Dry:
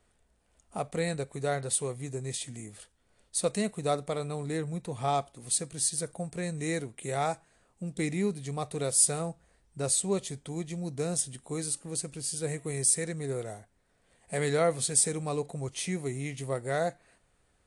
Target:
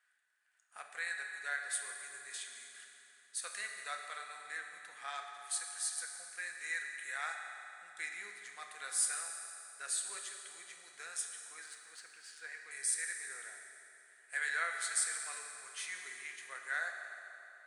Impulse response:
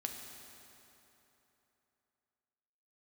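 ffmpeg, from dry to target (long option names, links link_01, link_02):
-filter_complex "[0:a]asettb=1/sr,asplit=3[link_01][link_02][link_03];[link_01]atrim=end=11.384[link_04];[link_02]atrim=start=11.38:end=12.71,asetpts=PTS-STARTPTS,afade=type=in:duration=0.004:curve=qsin,afade=type=out:start_time=1.326:duration=0.004:curve=qsin,adynamicsmooth=sensitivity=2:basefreq=3700[link_05];[link_03]atrim=start=12.706[link_06];[link_04][link_05]acrossfade=duration=0.004:curve1=hsin:curve2=qsin[link_07];[link_07][link_06]acrossfade=duration=0.004:curve1=qsin:curve2=hsin,highpass=frequency=1600:width_type=q:width=6.7[link_08];[1:a]atrim=start_sample=2205[link_09];[link_08][link_09]afir=irnorm=-1:irlink=0,volume=-7.5dB"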